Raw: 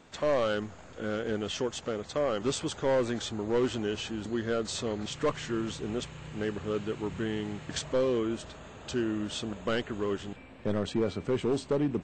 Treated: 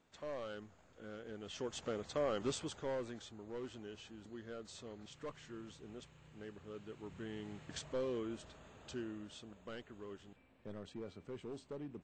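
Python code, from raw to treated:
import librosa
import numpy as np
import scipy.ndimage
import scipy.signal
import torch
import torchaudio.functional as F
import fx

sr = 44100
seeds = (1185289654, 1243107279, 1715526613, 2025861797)

y = fx.gain(x, sr, db=fx.line((1.36, -17.0), (1.8, -7.0), (2.39, -7.0), (3.32, -18.0), (6.72, -18.0), (7.57, -11.5), (8.83, -11.5), (9.44, -18.5)))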